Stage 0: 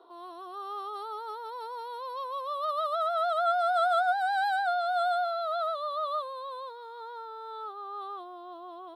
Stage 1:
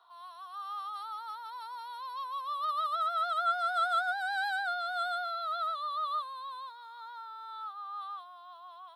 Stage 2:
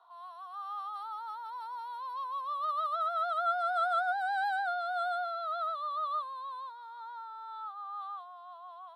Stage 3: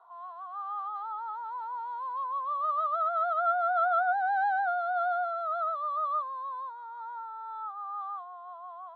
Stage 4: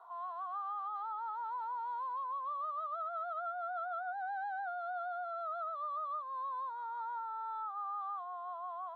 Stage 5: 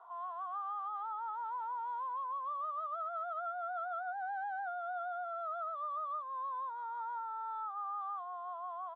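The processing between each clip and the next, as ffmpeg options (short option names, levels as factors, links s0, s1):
-af "highpass=f=960:w=0.5412,highpass=f=960:w=1.3066"
-af "equalizer=f=720:w=0.67:g=12,volume=0.398"
-af "lowpass=1500,volume=1.78"
-af "acompressor=threshold=0.0112:ratio=12,volume=1.26"
-af "aresample=8000,aresample=44100"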